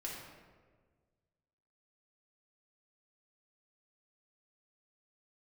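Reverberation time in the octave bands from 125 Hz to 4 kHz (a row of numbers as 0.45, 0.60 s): 2.1, 1.7, 1.7, 1.3, 1.2, 0.85 s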